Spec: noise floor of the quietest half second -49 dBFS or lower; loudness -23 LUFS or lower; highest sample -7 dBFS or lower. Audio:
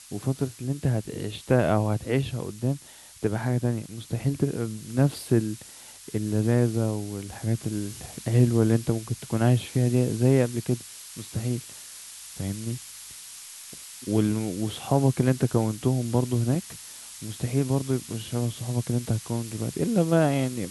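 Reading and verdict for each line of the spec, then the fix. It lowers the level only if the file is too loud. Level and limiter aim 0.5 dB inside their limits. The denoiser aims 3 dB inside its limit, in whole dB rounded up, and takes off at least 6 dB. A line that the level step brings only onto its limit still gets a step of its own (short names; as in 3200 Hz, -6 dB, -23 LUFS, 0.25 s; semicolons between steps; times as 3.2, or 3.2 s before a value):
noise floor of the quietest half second -46 dBFS: fail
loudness -26.5 LUFS: OK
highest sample -7.5 dBFS: OK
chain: denoiser 6 dB, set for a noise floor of -46 dBFS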